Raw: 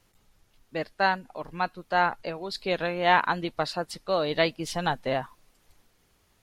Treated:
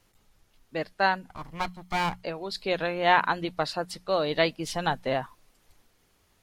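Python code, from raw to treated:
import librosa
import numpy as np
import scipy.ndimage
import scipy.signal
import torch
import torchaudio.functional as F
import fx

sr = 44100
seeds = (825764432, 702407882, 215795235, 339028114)

y = fx.lower_of_two(x, sr, delay_ms=0.96, at=(1.29, 2.23))
y = fx.hum_notches(y, sr, base_hz=60, count=3)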